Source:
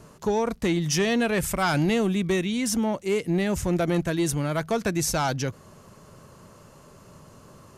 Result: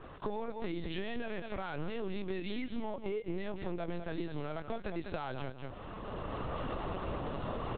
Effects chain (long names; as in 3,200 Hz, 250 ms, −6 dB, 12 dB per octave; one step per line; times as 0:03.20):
camcorder AGC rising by 16 dB per second
low-shelf EQ 160 Hz −11.5 dB
double-tracking delay 16 ms −13.5 dB
repeating echo 197 ms, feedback 17%, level −11 dB
linear-prediction vocoder at 8 kHz pitch kept
brickwall limiter −17 dBFS, peak gain reduction 7.5 dB
downward compressor 6 to 1, threshold −35 dBFS, peak gain reduction 12.5 dB
dynamic equaliser 2,000 Hz, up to −4 dB, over −53 dBFS, Q 0.77
level that may rise only so fast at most 460 dB per second
level +2 dB